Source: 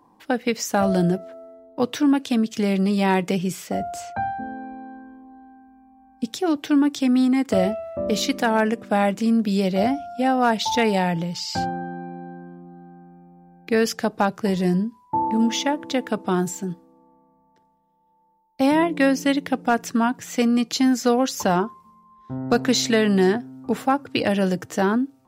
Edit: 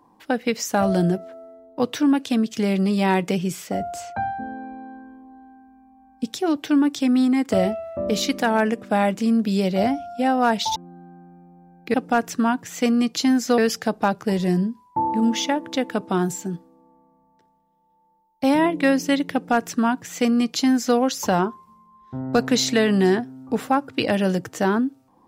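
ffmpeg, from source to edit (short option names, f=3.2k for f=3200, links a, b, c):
-filter_complex "[0:a]asplit=4[a][b][c][d];[a]atrim=end=10.762[e];[b]atrim=start=12.568:end=13.752[f];[c]atrim=start=19.498:end=21.142[g];[d]atrim=start=13.748[h];[e][f]acrossfade=d=0.004:c1=hsin:c2=hsin[i];[i][g]acrossfade=d=0.004:c1=hsin:c2=hsin[j];[j][h]acrossfade=d=0.004:c1=hsin:c2=hsin"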